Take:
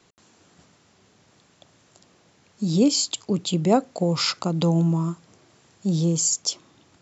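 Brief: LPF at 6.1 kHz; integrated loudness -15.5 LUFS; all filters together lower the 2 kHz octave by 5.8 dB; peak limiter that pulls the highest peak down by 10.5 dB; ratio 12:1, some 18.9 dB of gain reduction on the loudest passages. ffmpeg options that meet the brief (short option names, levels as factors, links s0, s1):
-af "lowpass=6100,equalizer=f=2000:t=o:g=-8,acompressor=threshold=0.0224:ratio=12,volume=17.8,alimiter=limit=0.473:level=0:latency=1"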